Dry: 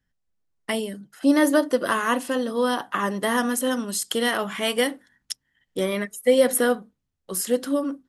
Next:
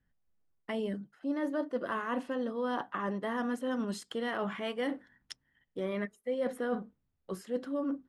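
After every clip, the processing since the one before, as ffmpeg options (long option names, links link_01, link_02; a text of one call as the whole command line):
ffmpeg -i in.wav -af "aemphasis=mode=reproduction:type=50fm,areverse,acompressor=threshold=-31dB:ratio=6,areverse,highshelf=frequency=3900:gain=-11" out.wav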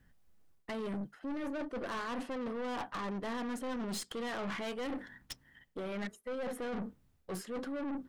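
ffmpeg -i in.wav -af "areverse,acompressor=threshold=-41dB:ratio=6,areverse,aeval=exprs='(tanh(251*val(0)+0.35)-tanh(0.35))/251':channel_layout=same,volume=12.5dB" out.wav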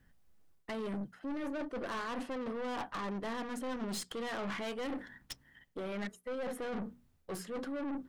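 ffmpeg -i in.wav -af "bandreject=frequency=60:width_type=h:width=6,bandreject=frequency=120:width_type=h:width=6,bandreject=frequency=180:width_type=h:width=6,bandreject=frequency=240:width_type=h:width=6" out.wav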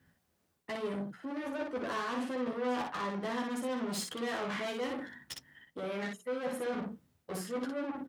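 ffmpeg -i in.wav -af "highpass=100,aecho=1:1:12|60:0.708|0.708" out.wav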